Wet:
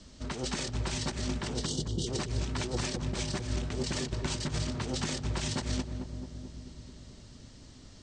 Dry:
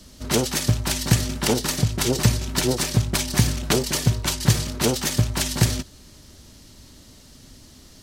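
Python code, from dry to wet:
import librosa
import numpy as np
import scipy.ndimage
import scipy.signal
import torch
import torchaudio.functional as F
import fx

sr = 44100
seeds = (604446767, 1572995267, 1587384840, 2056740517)

p1 = np.clip(x, -10.0 ** (-17.0 / 20.0), 10.0 ** (-17.0 / 20.0))
p2 = fx.spec_box(p1, sr, start_s=1.65, length_s=0.42, low_hz=520.0, high_hz=2800.0, gain_db=-30)
p3 = fx.over_compress(p2, sr, threshold_db=-25.0, ratio=-0.5)
p4 = scipy.signal.sosfilt(scipy.signal.butter(16, 8800.0, 'lowpass', fs=sr, output='sos'), p3)
p5 = fx.high_shelf(p4, sr, hz=6000.0, db=-6.0)
p6 = p5 + fx.echo_filtered(p5, sr, ms=219, feedback_pct=75, hz=850.0, wet_db=-5.5, dry=0)
y = p6 * 10.0 ** (-7.0 / 20.0)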